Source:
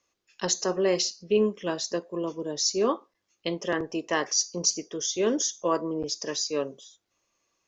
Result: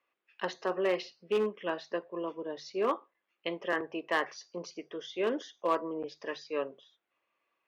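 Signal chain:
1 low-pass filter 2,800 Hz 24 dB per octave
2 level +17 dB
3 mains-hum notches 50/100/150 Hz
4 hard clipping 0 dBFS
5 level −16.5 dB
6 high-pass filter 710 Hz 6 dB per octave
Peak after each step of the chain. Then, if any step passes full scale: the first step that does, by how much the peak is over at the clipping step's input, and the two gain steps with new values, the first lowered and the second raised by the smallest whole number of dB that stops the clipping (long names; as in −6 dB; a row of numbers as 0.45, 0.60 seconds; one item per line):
−12.0, +5.0, +5.0, 0.0, −16.5, −16.5 dBFS
step 2, 5.0 dB
step 2 +12 dB, step 5 −11.5 dB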